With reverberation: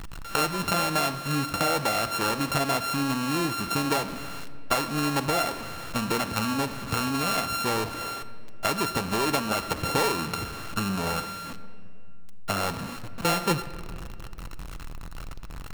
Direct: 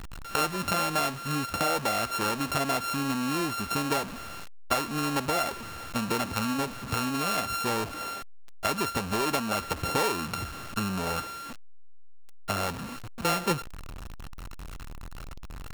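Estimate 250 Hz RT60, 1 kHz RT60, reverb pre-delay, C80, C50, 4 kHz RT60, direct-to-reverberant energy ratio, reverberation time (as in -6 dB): 3.2 s, 2.1 s, 6 ms, 14.0 dB, 13.5 dB, 1.6 s, 11.0 dB, 2.3 s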